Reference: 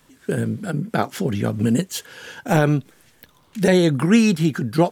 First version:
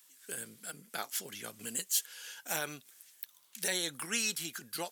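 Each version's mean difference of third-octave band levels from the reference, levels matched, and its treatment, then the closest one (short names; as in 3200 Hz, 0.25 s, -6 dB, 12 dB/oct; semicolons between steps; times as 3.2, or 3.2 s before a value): 11.0 dB: differentiator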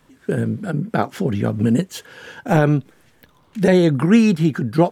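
2.5 dB: high shelf 3100 Hz -9 dB; gain +2 dB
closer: second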